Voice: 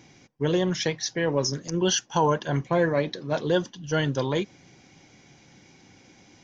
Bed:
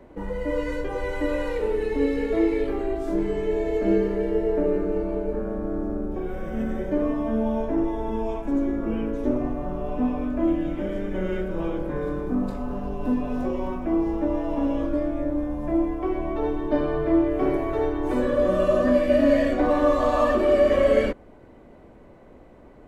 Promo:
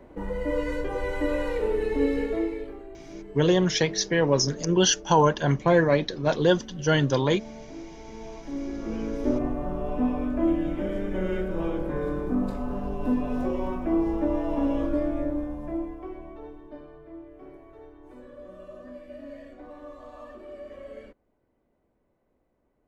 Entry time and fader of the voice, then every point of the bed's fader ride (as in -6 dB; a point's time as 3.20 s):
2.95 s, +3.0 dB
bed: 2.19 s -1 dB
2.90 s -17 dB
7.91 s -17 dB
9.29 s -1 dB
15.18 s -1 dB
17.01 s -23.5 dB